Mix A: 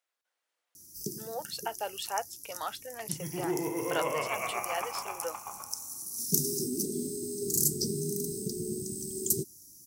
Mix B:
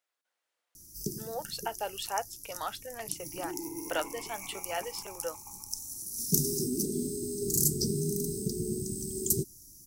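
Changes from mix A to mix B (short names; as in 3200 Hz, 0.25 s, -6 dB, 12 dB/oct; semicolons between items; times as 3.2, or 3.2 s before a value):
second sound: add vowel filter u; master: remove HPF 190 Hz 6 dB/oct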